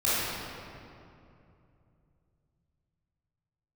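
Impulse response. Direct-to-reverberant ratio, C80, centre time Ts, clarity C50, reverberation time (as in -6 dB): -11.5 dB, -2.5 dB, 0.177 s, -5.5 dB, 2.7 s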